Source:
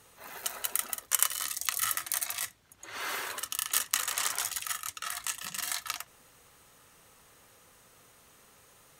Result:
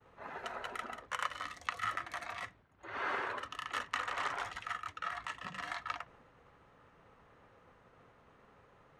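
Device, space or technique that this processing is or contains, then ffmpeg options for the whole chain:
hearing-loss simulation: -af "lowpass=1.6k,agate=range=-33dB:threshold=-60dB:ratio=3:detection=peak,volume=3dB"

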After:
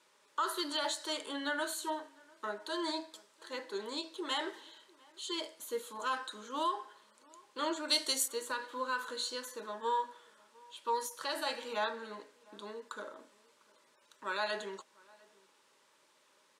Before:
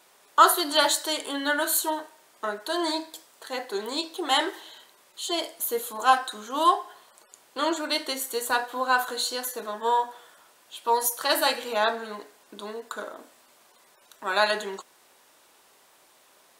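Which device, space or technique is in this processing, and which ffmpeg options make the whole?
PA system with an anti-feedback notch: -filter_complex "[0:a]highpass=110,asuperstop=centerf=720:order=20:qfactor=4.9,alimiter=limit=-15.5dB:level=0:latency=1:release=104,lowpass=8k,asettb=1/sr,asplit=3[a][b][c];[a]atrim=end=7.884[d];[b]atrim=start=7.88:end=8.28,asetpts=PTS-STARTPTS,afade=t=in:d=0.004:c=qsin,afade=t=out:st=0.396:d=0.004:c=qsin,bass=f=250:g=0,treble=f=4k:g=15[e];[c]atrim=start=8.276[f];[d][e]acrossfade=d=0.004:c1=hsin:c2=qsin[g];[g][f]acrossfade=d=0.004:c1=qsin:c2=hsin,asplit=2[h][i];[i]adelay=699.7,volume=-25dB,highshelf=f=4k:g=-15.7[j];[h][j]amix=inputs=2:normalize=0,volume=-8.5dB"

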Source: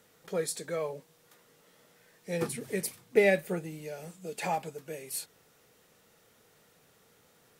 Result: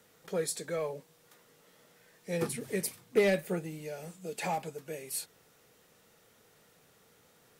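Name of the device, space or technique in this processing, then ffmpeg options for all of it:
one-band saturation: -filter_complex "[0:a]acrossover=split=420|4200[a][b][c];[b]asoftclip=type=tanh:threshold=-27dB[d];[a][d][c]amix=inputs=3:normalize=0"

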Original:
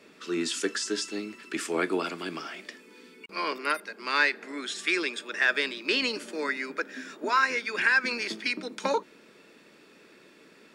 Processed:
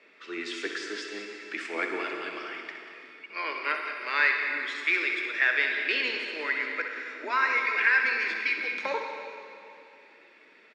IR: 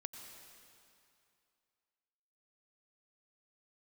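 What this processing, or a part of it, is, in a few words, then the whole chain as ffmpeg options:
station announcement: -filter_complex "[0:a]highpass=380,lowpass=4k,equalizer=f=2.1k:t=o:w=0.58:g=9,aecho=1:1:64.14|186.6:0.355|0.251[a];[1:a]atrim=start_sample=2205[b];[a][b]afir=irnorm=-1:irlink=0"

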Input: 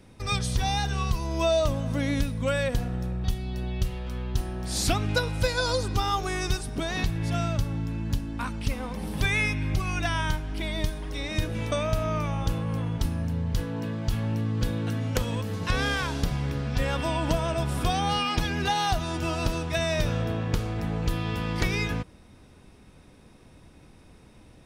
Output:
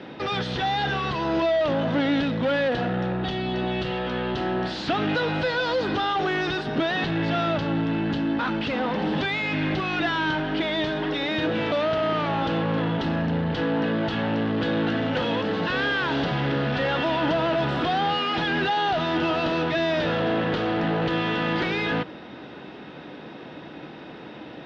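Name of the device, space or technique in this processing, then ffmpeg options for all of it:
overdrive pedal into a guitar cabinet: -filter_complex "[0:a]asplit=2[a][b];[b]highpass=f=720:p=1,volume=30dB,asoftclip=type=tanh:threshold=-13.5dB[c];[a][c]amix=inputs=2:normalize=0,lowpass=f=5k:p=1,volume=-6dB,highpass=97,equalizer=f=99:t=q:w=4:g=-8,equalizer=f=150:t=q:w=4:g=4,equalizer=f=310:t=q:w=4:g=5,equalizer=f=1.1k:t=q:w=4:g=-6,equalizer=f=2.3k:t=q:w=4:g=-8,lowpass=f=3.5k:w=0.5412,lowpass=f=3.5k:w=1.3066,volume=-2.5dB"

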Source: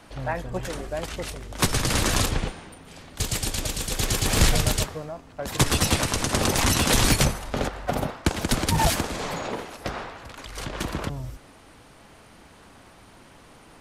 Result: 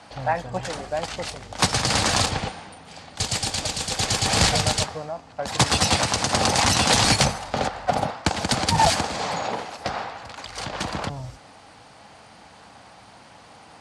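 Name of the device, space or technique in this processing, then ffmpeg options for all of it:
car door speaker: -af "highpass=94,equalizer=f=150:t=q:w=4:g=-3,equalizer=f=260:t=q:w=4:g=-4,equalizer=f=370:t=q:w=4:g=-8,equalizer=f=790:t=q:w=4:g=7,equalizer=f=4.6k:t=q:w=4:g=5,lowpass=f=9.1k:w=0.5412,lowpass=f=9.1k:w=1.3066,volume=2.5dB"

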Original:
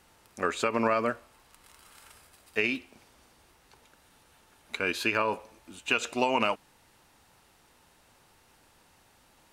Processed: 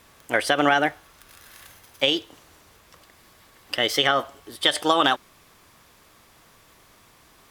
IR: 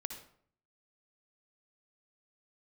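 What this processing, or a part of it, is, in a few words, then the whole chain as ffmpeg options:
nightcore: -af "asetrate=56007,aresample=44100,volume=7dB"

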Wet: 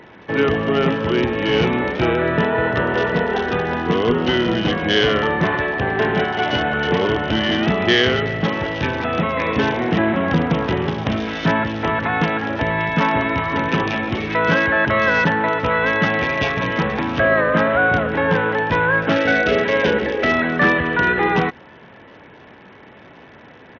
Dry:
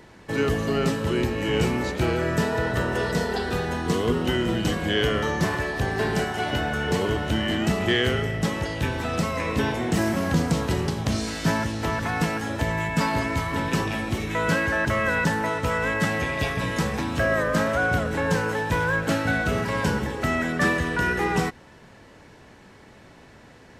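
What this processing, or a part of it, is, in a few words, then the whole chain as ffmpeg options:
Bluetooth headset: -filter_complex "[0:a]asettb=1/sr,asplit=3[a][b][c];[a]atrim=end=19.164[d];[b]atrim=start=19.16:end=20.32,asetpts=PTS-STARTPTS,afade=t=in:d=0.004:c=qsin,afade=t=out:st=1.156:d=0.004:c=qsin,equalizer=f=125:t=o:w=1:g=-9,equalizer=f=500:t=o:w=1:g=8,equalizer=f=1k:t=o:w=1:g=-8,equalizer=f=2k:t=o:w=1:g=4,equalizer=f=4k:t=o:w=1:g=4[e];[c]atrim=start=20.316[f];[d][e]acrossfade=d=0.004:c1=hsin:c2=qsin[g];[g][f]acrossfade=d=0.004:c1=qsin:c2=hsin,highpass=f=200:p=1,aresample=8000,aresample=44100,volume=7.5dB" -ar 48000 -c:a sbc -b:a 64k

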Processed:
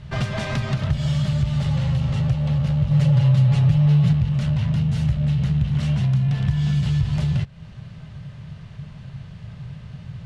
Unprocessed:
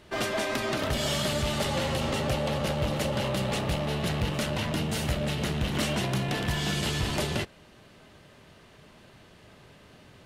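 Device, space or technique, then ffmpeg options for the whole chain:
jukebox: -filter_complex "[0:a]lowpass=6.3k,lowshelf=f=210:t=q:w=3:g=13.5,acompressor=threshold=-25dB:ratio=3,asettb=1/sr,asplit=3[a][b][c];[a]atrim=end=2.904[d];[b]atrim=start=2.9:end=4.13,asetpts=PTS-STARTPTS,afade=t=in:d=0.004:c=qsin,afade=t=out:st=1.226:d=0.004:c=qsin,aecho=1:1:7.1:0.85,atrim=end_sample=54243[e];[c]atrim=start=4.126[f];[d][e]acrossfade=d=0.004:c1=hsin:c2=qsin[g];[g][f]acrossfade=d=0.004:c1=qsin:c2=hsin,volume=3.5dB"

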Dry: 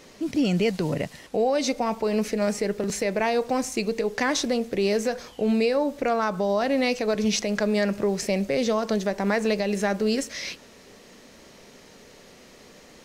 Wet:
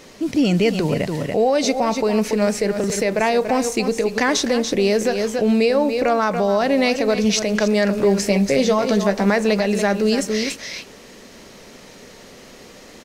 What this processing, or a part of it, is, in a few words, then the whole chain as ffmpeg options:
ducked delay: -filter_complex "[0:a]asplit=3[a][b][c];[b]adelay=285,volume=-3.5dB[d];[c]apad=whole_len=587728[e];[d][e]sidechaincompress=threshold=-29dB:ratio=8:attack=6.6:release=121[f];[a][f]amix=inputs=2:normalize=0,asettb=1/sr,asplit=3[g][h][i];[g]atrim=end=7.914[j];[h]atrim=start=7.91:end=9.3,asetpts=PTS-STARTPTS,afade=t=in:d=0.004:c=qsin,afade=t=out:st=1.386:d=0.004:c=qsin,asplit=2[k][l];[l]adelay=15,volume=-6.5dB[m];[k][m]amix=inputs=2:normalize=0,atrim=end_sample=61299[n];[i]atrim=start=9.296[o];[j][n]acrossfade=d=0.004:c1=hsin:c2=qsin[p];[p][o]acrossfade=d=0.004:c1=qsin:c2=hsin,volume=5.5dB"

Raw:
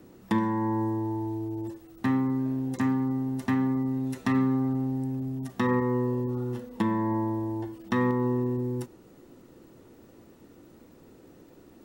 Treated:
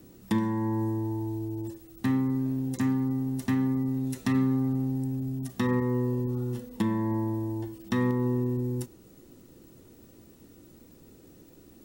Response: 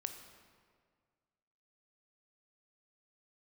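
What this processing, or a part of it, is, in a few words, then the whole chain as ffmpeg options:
smiley-face EQ: -af "lowshelf=f=110:g=4.5,equalizer=f=1k:t=o:w=2.4:g=-6,highshelf=f=5.1k:g=7.5"

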